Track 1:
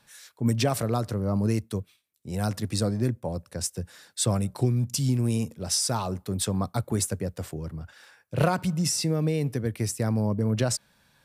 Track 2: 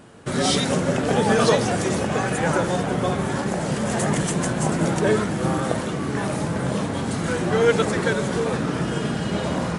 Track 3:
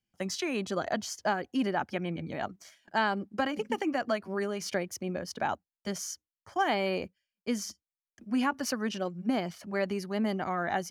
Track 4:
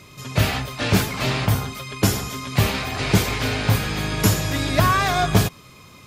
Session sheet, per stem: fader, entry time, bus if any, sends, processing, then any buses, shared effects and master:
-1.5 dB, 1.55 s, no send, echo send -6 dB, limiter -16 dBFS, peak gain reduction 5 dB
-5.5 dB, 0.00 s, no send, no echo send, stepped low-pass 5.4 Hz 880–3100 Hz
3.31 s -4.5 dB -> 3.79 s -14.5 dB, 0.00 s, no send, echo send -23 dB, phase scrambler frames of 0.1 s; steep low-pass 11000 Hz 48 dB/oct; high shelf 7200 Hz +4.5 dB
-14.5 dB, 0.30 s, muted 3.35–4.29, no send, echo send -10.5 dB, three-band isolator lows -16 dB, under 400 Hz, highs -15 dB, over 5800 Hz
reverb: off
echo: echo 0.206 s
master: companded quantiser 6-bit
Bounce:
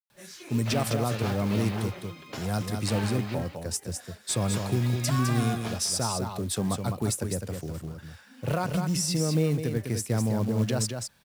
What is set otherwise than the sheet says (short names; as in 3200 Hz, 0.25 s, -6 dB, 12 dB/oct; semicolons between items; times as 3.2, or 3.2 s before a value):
stem 1: entry 1.55 s -> 0.10 s; stem 2: muted; stem 3 -4.5 dB -> -13.0 dB